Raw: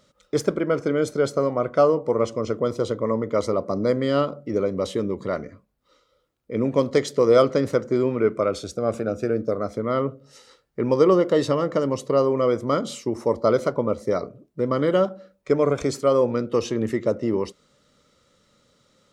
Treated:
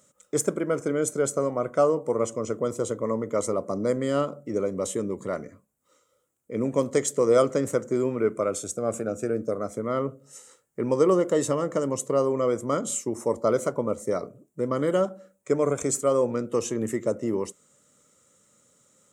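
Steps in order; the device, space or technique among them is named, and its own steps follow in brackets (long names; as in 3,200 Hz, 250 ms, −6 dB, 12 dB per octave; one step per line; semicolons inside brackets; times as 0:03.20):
budget condenser microphone (high-pass filter 97 Hz; high shelf with overshoot 5,900 Hz +9.5 dB, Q 3)
level −3.5 dB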